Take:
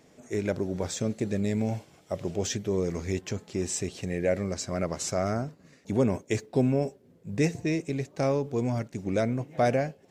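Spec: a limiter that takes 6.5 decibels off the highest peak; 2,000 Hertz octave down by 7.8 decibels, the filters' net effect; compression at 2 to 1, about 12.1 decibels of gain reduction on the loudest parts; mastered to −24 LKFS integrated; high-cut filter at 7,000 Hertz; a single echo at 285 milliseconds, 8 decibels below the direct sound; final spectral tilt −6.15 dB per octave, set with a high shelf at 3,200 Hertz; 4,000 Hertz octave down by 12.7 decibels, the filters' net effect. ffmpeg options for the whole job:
ffmpeg -i in.wav -af "lowpass=7000,equalizer=frequency=2000:width_type=o:gain=-5,highshelf=frequency=3200:gain=-8,equalizer=frequency=4000:width_type=o:gain=-8.5,acompressor=threshold=-43dB:ratio=2,alimiter=level_in=6.5dB:limit=-24dB:level=0:latency=1,volume=-6.5dB,aecho=1:1:285:0.398,volume=17.5dB" out.wav

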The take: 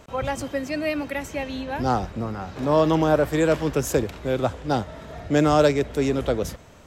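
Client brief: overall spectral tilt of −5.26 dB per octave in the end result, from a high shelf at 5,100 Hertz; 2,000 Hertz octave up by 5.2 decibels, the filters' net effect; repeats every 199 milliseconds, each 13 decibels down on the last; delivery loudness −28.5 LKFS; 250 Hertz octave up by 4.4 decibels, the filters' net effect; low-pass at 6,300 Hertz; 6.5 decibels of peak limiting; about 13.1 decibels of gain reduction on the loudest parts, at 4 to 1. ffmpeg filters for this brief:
ffmpeg -i in.wav -af "lowpass=6300,equalizer=frequency=250:width_type=o:gain=5.5,equalizer=frequency=2000:width_type=o:gain=6,highshelf=frequency=5100:gain=4,acompressor=threshold=-28dB:ratio=4,alimiter=limit=-23.5dB:level=0:latency=1,aecho=1:1:199|398|597:0.224|0.0493|0.0108,volume=4.5dB" out.wav

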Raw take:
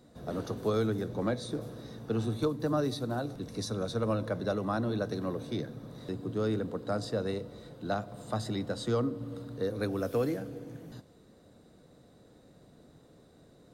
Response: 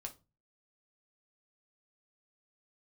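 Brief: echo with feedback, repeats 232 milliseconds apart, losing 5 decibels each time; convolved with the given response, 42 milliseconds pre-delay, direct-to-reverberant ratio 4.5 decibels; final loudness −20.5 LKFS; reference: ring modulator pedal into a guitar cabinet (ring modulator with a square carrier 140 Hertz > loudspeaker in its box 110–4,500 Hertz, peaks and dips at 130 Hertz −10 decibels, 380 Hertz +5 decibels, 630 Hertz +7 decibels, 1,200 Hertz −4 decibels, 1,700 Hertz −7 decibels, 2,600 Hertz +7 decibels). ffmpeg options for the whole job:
-filter_complex "[0:a]aecho=1:1:232|464|696|928|1160|1392|1624:0.562|0.315|0.176|0.0988|0.0553|0.031|0.0173,asplit=2[link_01][link_02];[1:a]atrim=start_sample=2205,adelay=42[link_03];[link_02][link_03]afir=irnorm=-1:irlink=0,volume=-1dB[link_04];[link_01][link_04]amix=inputs=2:normalize=0,aeval=exprs='val(0)*sgn(sin(2*PI*140*n/s))':channel_layout=same,highpass=110,equalizer=frequency=130:width_type=q:width=4:gain=-10,equalizer=frequency=380:width_type=q:width=4:gain=5,equalizer=frequency=630:width_type=q:width=4:gain=7,equalizer=frequency=1200:width_type=q:width=4:gain=-4,equalizer=frequency=1700:width_type=q:width=4:gain=-7,equalizer=frequency=2600:width_type=q:width=4:gain=7,lowpass=frequency=4500:width=0.5412,lowpass=frequency=4500:width=1.3066,volume=8dB"

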